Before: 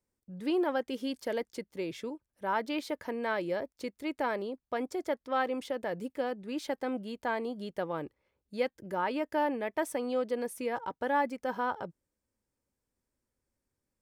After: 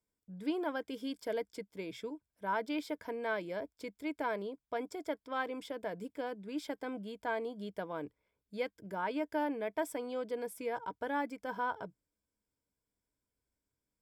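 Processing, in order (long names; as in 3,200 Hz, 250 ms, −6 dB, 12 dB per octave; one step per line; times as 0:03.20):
EQ curve with evenly spaced ripples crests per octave 1.7, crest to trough 8 dB
level −5 dB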